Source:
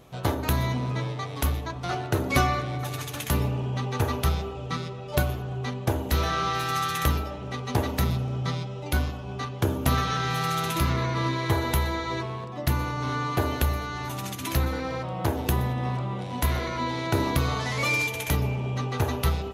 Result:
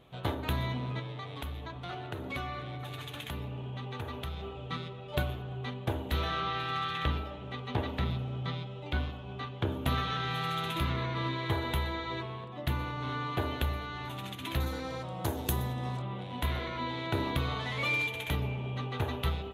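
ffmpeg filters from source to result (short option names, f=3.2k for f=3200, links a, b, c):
-filter_complex "[0:a]asettb=1/sr,asplit=3[a][b][c];[a]atrim=end=0.994[d];[b]atrim=start=0.99:end=4.43,asetpts=PTS-STARTPTS,afade=t=in:d=0.004:c=qsin,afade=t=out:st=3.436:d=0.004:c=qsin,acompressor=threshold=-30dB:ratio=2.5:attack=3.2:release=140:knee=1:detection=peak[e];[c]atrim=start=4.426[f];[d][e]acrossfade=d=0.004:c1=hsin:c2=qsin[g];[g][f]acrossfade=d=0.004:c1=qsin:c2=hsin,asettb=1/sr,asplit=3[h][i][j];[h]atrim=end=6.404[k];[i]atrim=start=6.4:end=9.72,asetpts=PTS-STARTPTS,afade=t=in:d=0.004:c=qsin,afade=t=out:st=3.316:d=0.004:c=qsin,acrossover=split=5400[l][m];[m]acompressor=threshold=-54dB:ratio=4:attack=1:release=60[n];[l][n]amix=inputs=2:normalize=0[o];[j]atrim=start=9.716[p];[k][o]acrossfade=d=0.004:c1=hsin:c2=qsin[q];[q][p]acrossfade=d=0.004:c1=qsin:c2=hsin,asettb=1/sr,asplit=3[r][s][t];[r]atrim=end=14.604[u];[s]atrim=start=14.6:end=16.02,asetpts=PTS-STARTPTS,afade=t=in:d=0.004:c=qsin,afade=t=out:st=1.416:d=0.004:c=qsin,highshelf=f=4.3k:t=q:w=1.5:g=12[v];[t]atrim=start=16.016[w];[u][v]acrossfade=d=0.004:c1=hsin:c2=qsin[x];[x][w]acrossfade=d=0.004:c1=qsin:c2=hsin,highshelf=f=4.3k:t=q:w=3:g=-6.5,volume=-7dB"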